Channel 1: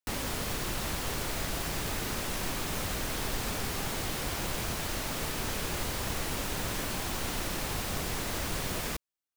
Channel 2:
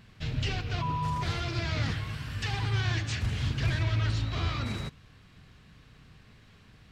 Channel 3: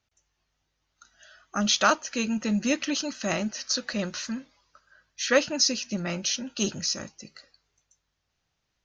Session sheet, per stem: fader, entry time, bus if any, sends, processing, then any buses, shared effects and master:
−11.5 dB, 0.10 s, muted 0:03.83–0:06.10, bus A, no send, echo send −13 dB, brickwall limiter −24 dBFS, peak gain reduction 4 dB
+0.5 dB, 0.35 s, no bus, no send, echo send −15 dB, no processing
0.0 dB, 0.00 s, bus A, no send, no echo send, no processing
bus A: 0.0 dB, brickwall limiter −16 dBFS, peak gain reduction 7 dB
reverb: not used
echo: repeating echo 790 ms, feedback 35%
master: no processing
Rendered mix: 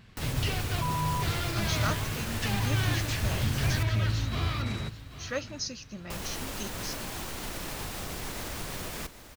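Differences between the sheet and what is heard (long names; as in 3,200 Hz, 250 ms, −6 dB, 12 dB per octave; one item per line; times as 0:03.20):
stem 1 −11.5 dB → −2.5 dB
stem 2: entry 0.35 s → 0.00 s
stem 3 0.0 dB → −12.0 dB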